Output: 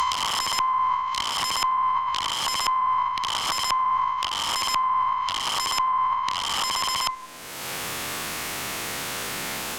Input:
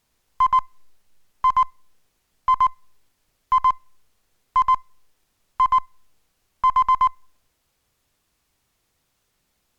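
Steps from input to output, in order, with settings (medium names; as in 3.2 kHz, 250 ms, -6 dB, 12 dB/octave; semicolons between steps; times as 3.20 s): reverse spectral sustain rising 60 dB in 2.58 s; bass shelf 70 Hz -11 dB; integer overflow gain 17 dB; compressor with a negative ratio -29 dBFS, ratio -0.5; low-pass that closes with the level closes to 1.7 kHz, closed at -24 dBFS; treble shelf 2.2 kHz +11 dB; three bands compressed up and down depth 100%; trim +2 dB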